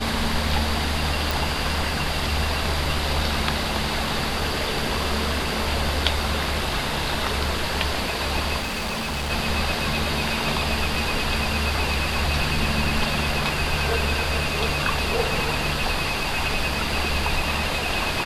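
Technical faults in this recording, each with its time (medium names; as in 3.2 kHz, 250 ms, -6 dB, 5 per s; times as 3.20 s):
1.31 s: pop
8.58–9.31 s: clipped -24 dBFS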